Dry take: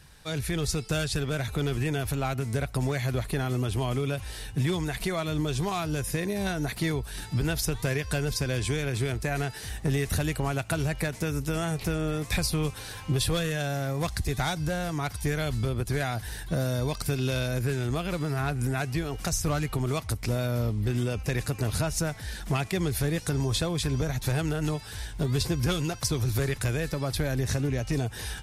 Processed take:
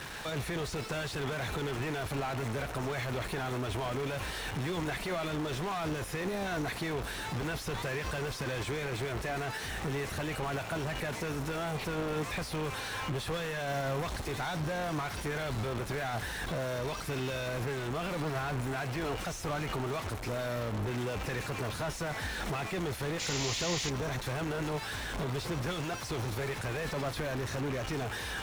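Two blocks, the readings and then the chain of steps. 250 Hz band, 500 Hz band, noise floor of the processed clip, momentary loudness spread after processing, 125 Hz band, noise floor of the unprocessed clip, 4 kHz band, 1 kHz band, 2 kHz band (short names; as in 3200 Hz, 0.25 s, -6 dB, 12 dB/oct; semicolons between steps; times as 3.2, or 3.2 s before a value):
-7.0 dB, -3.5 dB, -40 dBFS, 2 LU, -9.0 dB, -41 dBFS, -4.0 dB, -0.5 dB, -2.0 dB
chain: companded quantiser 4-bit; limiter -29.5 dBFS, peak gain reduction 11 dB; overdrive pedal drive 25 dB, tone 1800 Hz, clips at -29.5 dBFS; notch 4800 Hz, Q 25; painted sound noise, 23.19–23.9, 1800–7400 Hz -39 dBFS; gain +2.5 dB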